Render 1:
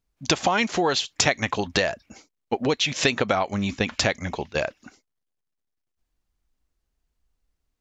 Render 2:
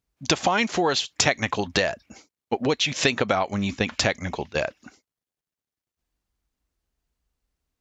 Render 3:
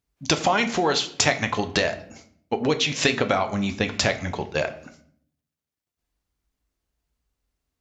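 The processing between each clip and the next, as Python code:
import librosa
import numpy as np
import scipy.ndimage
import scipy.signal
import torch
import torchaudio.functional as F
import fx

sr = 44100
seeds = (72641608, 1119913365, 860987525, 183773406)

y1 = scipy.signal.sosfilt(scipy.signal.butter(2, 41.0, 'highpass', fs=sr, output='sos'), x)
y2 = fx.room_shoebox(y1, sr, seeds[0], volume_m3=83.0, walls='mixed', distance_m=0.31)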